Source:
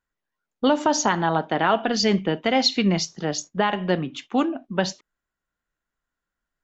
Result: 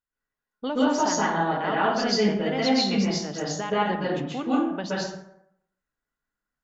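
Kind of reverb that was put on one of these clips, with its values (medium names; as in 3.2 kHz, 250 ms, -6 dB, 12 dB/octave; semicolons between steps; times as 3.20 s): plate-style reverb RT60 0.74 s, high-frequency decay 0.55×, pre-delay 115 ms, DRR -8 dB; trim -11 dB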